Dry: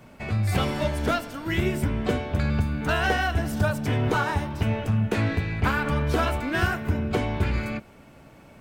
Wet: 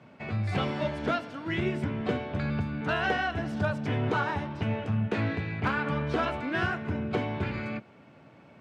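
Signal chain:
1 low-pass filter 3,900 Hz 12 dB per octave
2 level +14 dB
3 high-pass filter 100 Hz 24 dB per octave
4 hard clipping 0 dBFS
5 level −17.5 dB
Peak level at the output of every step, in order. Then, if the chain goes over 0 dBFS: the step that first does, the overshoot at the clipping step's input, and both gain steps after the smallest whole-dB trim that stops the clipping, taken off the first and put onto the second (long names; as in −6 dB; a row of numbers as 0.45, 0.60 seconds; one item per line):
−9.0, +5.0, +4.0, 0.0, −17.5 dBFS
step 2, 4.0 dB
step 2 +10 dB, step 5 −13.5 dB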